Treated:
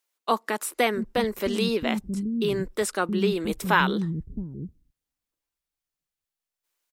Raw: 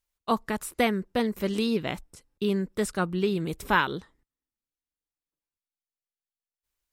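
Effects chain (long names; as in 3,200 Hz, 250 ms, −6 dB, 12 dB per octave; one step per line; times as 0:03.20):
in parallel at −1 dB: brickwall limiter −20.5 dBFS, peak gain reduction 11 dB
on the sum: multiband delay without the direct sound highs, lows 670 ms, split 250 Hz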